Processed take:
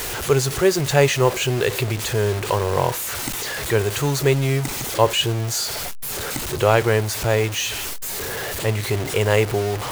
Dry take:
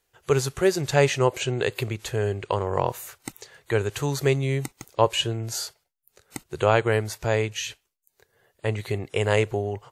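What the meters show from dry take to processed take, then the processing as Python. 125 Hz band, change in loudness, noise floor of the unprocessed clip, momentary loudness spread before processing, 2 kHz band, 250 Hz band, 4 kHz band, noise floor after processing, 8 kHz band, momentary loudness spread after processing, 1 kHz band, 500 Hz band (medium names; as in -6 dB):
+5.0 dB, +4.5 dB, -75 dBFS, 12 LU, +5.5 dB, +4.5 dB, +7.0 dB, -28 dBFS, +9.0 dB, 8 LU, +4.0 dB, +4.0 dB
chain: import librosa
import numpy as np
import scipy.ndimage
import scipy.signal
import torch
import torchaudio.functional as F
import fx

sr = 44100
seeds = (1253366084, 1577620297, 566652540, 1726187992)

y = x + 0.5 * 10.0 ** (-27.0 / 20.0) * np.sign(x)
y = fx.quant_dither(y, sr, seeds[0], bits=6, dither='none')
y = y * librosa.db_to_amplitude(2.5)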